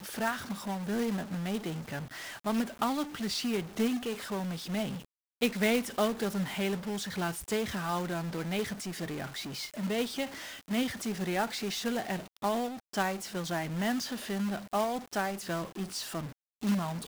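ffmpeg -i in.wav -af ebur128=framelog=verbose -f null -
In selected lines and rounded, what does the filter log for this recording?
Integrated loudness:
  I:         -33.3 LUFS
  Threshold: -43.4 LUFS
Loudness range:
  LRA:         2.5 LU
  Threshold: -53.2 LUFS
  LRA low:   -34.4 LUFS
  LRA high:  -31.9 LUFS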